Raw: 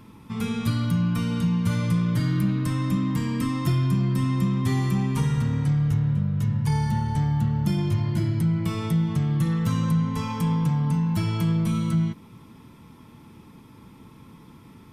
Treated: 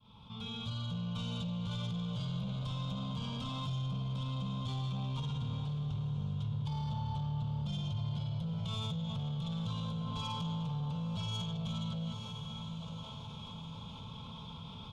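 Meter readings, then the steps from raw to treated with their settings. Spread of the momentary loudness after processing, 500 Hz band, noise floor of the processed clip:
9 LU, -13.5 dB, -47 dBFS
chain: opening faded in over 1.40 s; limiter -19 dBFS, peak gain reduction 7 dB; synth low-pass 3400 Hz, resonance Q 6.7; speakerphone echo 0.36 s, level -16 dB; soft clip -22.5 dBFS, distortion -17 dB; fixed phaser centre 780 Hz, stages 4; on a send: diffused feedback echo 0.942 s, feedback 42%, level -11.5 dB; on the sum: fast leveller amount 50%; gain -8.5 dB

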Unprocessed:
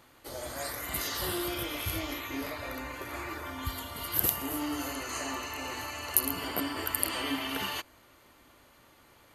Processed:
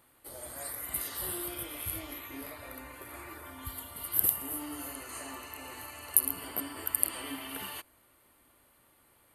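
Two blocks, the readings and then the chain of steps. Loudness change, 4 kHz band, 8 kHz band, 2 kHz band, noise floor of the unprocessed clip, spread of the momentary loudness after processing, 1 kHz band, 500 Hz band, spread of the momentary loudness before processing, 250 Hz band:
-1.0 dB, -9.0 dB, +1.5 dB, -8.0 dB, -60 dBFS, 18 LU, -7.5 dB, -7.5 dB, 11 LU, -7.5 dB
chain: resonant high shelf 7700 Hz +6.5 dB, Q 3; gain -7.5 dB

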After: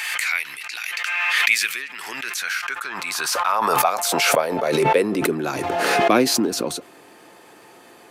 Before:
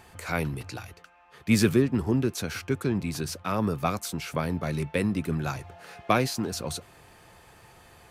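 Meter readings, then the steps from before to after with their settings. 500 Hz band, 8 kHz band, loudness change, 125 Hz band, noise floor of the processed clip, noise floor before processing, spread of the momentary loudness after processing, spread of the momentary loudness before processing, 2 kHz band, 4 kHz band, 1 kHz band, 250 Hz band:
+8.5 dB, +11.5 dB, +7.5 dB, -7.5 dB, -48 dBFS, -55 dBFS, 11 LU, 15 LU, +14.0 dB, +12.5 dB, +12.0 dB, +1.0 dB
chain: high-pass sweep 2100 Hz -> 290 Hz, 2.07–5.61; maximiser +9 dB; backwards sustainer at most 21 dB/s; gain -4 dB

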